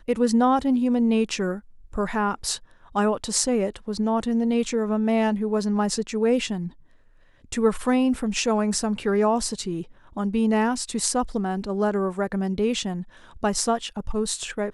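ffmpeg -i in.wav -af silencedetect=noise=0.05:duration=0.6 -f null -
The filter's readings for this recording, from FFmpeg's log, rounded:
silence_start: 6.67
silence_end: 7.53 | silence_duration: 0.85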